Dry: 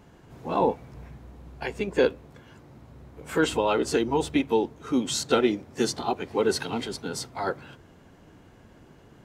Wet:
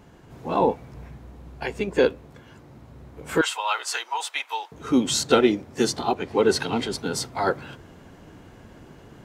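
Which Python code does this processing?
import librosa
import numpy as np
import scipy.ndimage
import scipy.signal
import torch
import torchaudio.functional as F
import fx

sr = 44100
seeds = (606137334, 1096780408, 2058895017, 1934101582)

p1 = fx.highpass(x, sr, hz=900.0, slope=24, at=(3.41, 4.72))
p2 = fx.high_shelf(p1, sr, hz=11000.0, db=-7.5, at=(6.14, 6.93))
p3 = fx.rider(p2, sr, range_db=10, speed_s=2.0)
p4 = p2 + (p3 * librosa.db_to_amplitude(2.5))
y = p4 * librosa.db_to_amplitude(-3.5)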